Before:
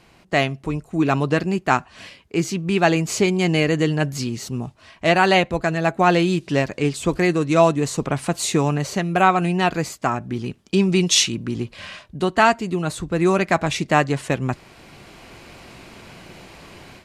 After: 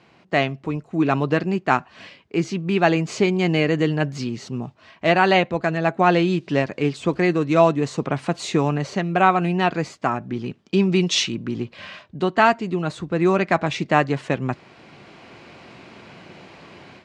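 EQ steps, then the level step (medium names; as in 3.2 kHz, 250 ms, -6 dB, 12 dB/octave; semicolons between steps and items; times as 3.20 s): high-pass 120 Hz; distance through air 97 m; treble shelf 9.4 kHz -6 dB; 0.0 dB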